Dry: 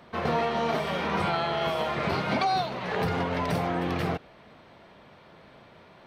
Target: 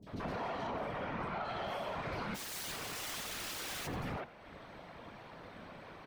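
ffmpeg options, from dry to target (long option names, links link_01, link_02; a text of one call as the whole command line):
ffmpeg -i in.wav -filter_complex "[0:a]asettb=1/sr,asplit=3[link_01][link_02][link_03];[link_01]atrim=end=0.644[link_04];[link_02]atrim=start=0.64:end=1.42,asetpts=PTS-STARTPTS,afade=type=in:duration=0.004:curve=qsin,afade=type=out:start_time=0.776:duration=0.004:curve=qsin,acrossover=split=2700[link_05][link_06];[link_06]acompressor=threshold=-52dB:ratio=4:attack=1:release=60[link_07];[link_05][link_07]amix=inputs=2:normalize=0[link_08];[link_03]atrim=start=1.416[link_09];[link_04][link_08]acrossfade=duration=0.004:curve1=hsin:curve2=qsin[link_10];[link_10][link_09]acrossfade=duration=0.004:curve1=qsin:curve2=hsin,acrossover=split=360|3600[link_11][link_12][link_13];[link_13]adelay=30[link_14];[link_12]adelay=70[link_15];[link_11][link_15][link_14]amix=inputs=3:normalize=0,asplit=2[link_16][link_17];[link_17]acompressor=threshold=-42dB:ratio=6,volume=-1dB[link_18];[link_16][link_18]amix=inputs=2:normalize=0,asplit=3[link_19][link_20][link_21];[link_19]afade=type=out:start_time=2.34:duration=0.02[link_22];[link_20]aeval=exprs='(mod(31.6*val(0)+1,2)-1)/31.6':channel_layout=same,afade=type=in:start_time=2.34:duration=0.02,afade=type=out:start_time=3.86:duration=0.02[link_23];[link_21]afade=type=in:start_time=3.86:duration=0.02[link_24];[link_22][link_23][link_24]amix=inputs=3:normalize=0,afftfilt=real='hypot(re,im)*cos(2*PI*random(0))':imag='hypot(re,im)*sin(2*PI*random(1))':win_size=512:overlap=0.75,asoftclip=type=tanh:threshold=-25.5dB,alimiter=level_in=10.5dB:limit=-24dB:level=0:latency=1:release=461,volume=-10.5dB,asplit=2[link_25][link_26];[link_26]asplit=4[link_27][link_28][link_29][link_30];[link_27]adelay=90,afreqshift=62,volume=-17dB[link_31];[link_28]adelay=180,afreqshift=124,volume=-24.3dB[link_32];[link_29]adelay=270,afreqshift=186,volume=-31.7dB[link_33];[link_30]adelay=360,afreqshift=248,volume=-39dB[link_34];[link_31][link_32][link_33][link_34]amix=inputs=4:normalize=0[link_35];[link_25][link_35]amix=inputs=2:normalize=0,volume=2.5dB" out.wav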